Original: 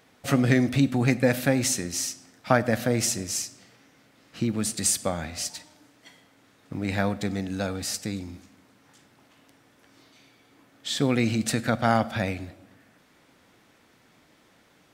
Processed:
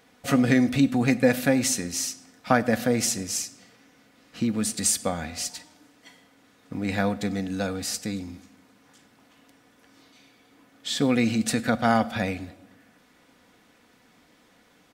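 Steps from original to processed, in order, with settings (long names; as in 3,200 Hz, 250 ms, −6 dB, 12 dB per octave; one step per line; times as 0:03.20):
comb filter 4.1 ms, depth 37%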